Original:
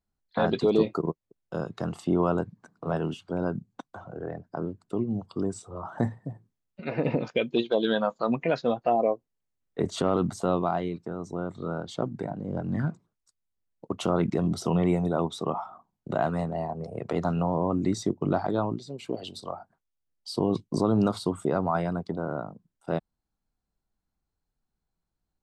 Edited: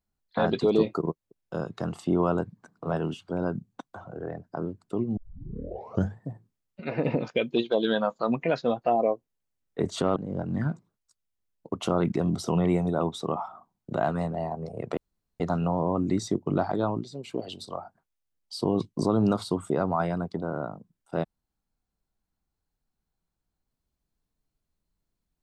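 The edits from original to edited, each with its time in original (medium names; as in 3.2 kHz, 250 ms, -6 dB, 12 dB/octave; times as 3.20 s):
5.17 s: tape start 1.04 s
10.16–12.34 s: delete
17.15 s: insert room tone 0.43 s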